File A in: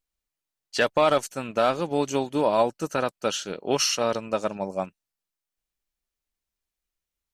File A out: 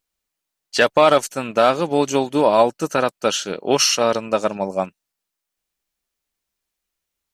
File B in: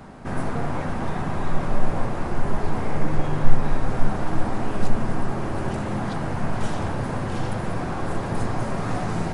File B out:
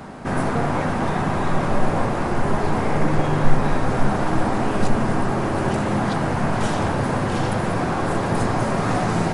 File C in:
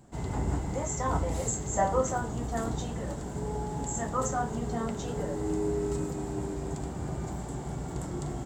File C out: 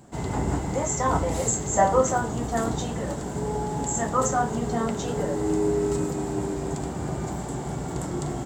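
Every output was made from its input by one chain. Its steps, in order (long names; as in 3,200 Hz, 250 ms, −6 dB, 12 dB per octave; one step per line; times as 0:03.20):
low-shelf EQ 75 Hz −10.5 dB
level +7 dB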